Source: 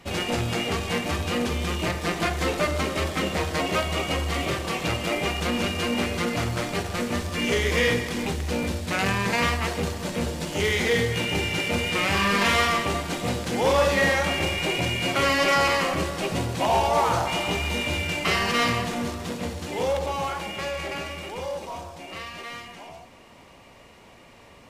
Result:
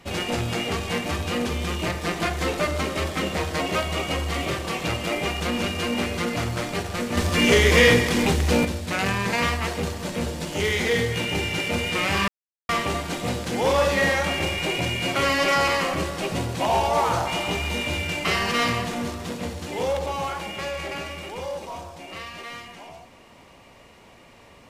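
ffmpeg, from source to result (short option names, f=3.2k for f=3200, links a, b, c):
-filter_complex "[0:a]asettb=1/sr,asplit=3[a][b][c];[a]atrim=end=7.174[d];[b]atrim=start=7.17:end=8.65,asetpts=PTS-STARTPTS,afade=t=in:d=0.004:c=qsin,afade=t=out:st=1.476:d=0.004:c=qsin,acontrast=84[e];[c]atrim=start=8.646[f];[d][e]acrossfade=d=0.004:c1=hsin:c2=qsin[g];[g][f]acrossfade=d=0.004:c1=qsin:c2=hsin,asplit=3[h][i][j];[h]atrim=end=12.28,asetpts=PTS-STARTPTS,afade=t=out:st=12.276:d=0.004:c=hsin[k];[i]atrim=start=12.28:end=12.69,asetpts=PTS-STARTPTS,volume=0[l];[j]atrim=start=12.69,asetpts=PTS-STARTPTS,afade=t=in:d=0.004:c=hsin[m];[k][l][m]concat=n=3:v=0:a=1"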